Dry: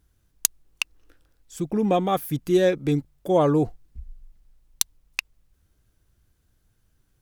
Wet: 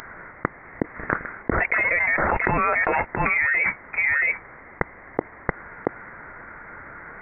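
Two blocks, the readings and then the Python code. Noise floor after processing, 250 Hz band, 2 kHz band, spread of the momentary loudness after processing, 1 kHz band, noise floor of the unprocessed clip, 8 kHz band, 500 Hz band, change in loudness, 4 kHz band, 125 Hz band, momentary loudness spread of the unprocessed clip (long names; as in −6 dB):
−45 dBFS, −6.5 dB, +17.0 dB, 20 LU, +5.0 dB, −68 dBFS, below −35 dB, −5.0 dB, +1.0 dB, below −25 dB, −4.0 dB, 11 LU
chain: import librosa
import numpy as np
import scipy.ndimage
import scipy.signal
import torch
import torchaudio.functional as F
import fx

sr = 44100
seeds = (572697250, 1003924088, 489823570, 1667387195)

y = scipy.signal.sosfilt(scipy.signal.cheby1(4, 1.0, 920.0, 'highpass', fs=sr, output='sos'), x)
y = y + 10.0 ** (-19.0 / 20.0) * np.pad(y, (int(679 * sr / 1000.0), 0))[:len(y)]
y = fx.freq_invert(y, sr, carrier_hz=3000)
y = fx.env_flatten(y, sr, amount_pct=100)
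y = y * 10.0 ** (3.0 / 20.0)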